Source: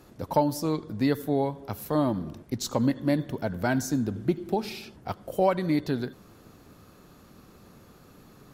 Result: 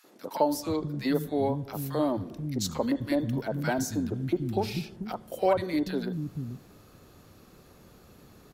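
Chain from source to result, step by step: three bands offset in time highs, mids, lows 40/480 ms, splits 220/1200 Hz

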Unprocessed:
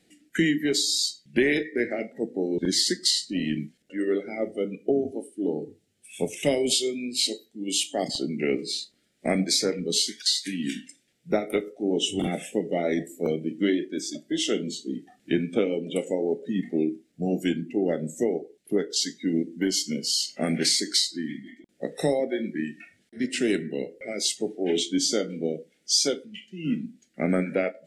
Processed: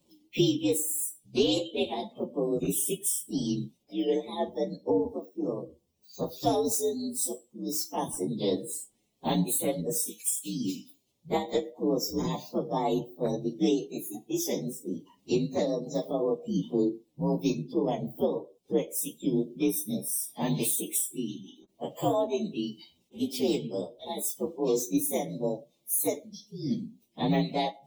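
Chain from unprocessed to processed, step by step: frequency axis rescaled in octaves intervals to 125%; 12.43–13.23 s: graphic EQ with 31 bands 1.25 kHz +6 dB, 3.15 kHz -10 dB, 8 kHz -5 dB

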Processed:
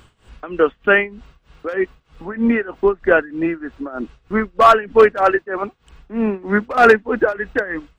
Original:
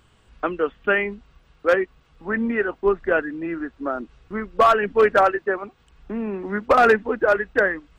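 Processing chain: in parallel at +1 dB: peak limiter -17 dBFS, peak gain reduction 9 dB; on the sum: tremolo 3.2 Hz, depth 88%; trim +3.5 dB

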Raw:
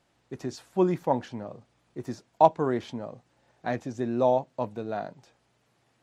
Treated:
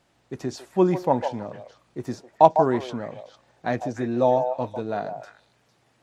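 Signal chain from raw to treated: 3.93–4.79 s: comb of notches 200 Hz; repeats whose band climbs or falls 151 ms, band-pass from 670 Hz, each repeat 1.4 oct, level -5.5 dB; trim +4 dB

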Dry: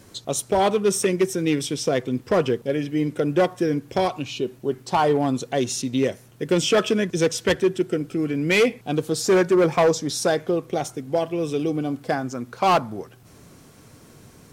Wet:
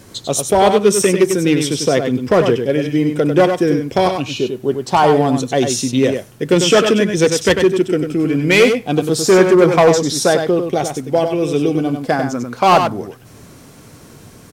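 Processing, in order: delay 97 ms -6.5 dB; trim +7 dB

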